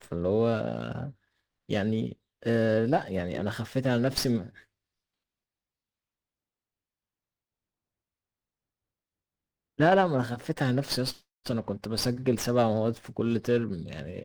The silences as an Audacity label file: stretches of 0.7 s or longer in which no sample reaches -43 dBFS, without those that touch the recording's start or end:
4.580000	9.790000	silence